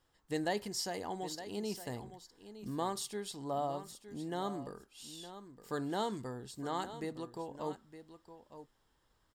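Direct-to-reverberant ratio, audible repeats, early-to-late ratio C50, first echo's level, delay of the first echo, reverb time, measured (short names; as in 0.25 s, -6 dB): none, 1, none, -12.5 dB, 0.913 s, none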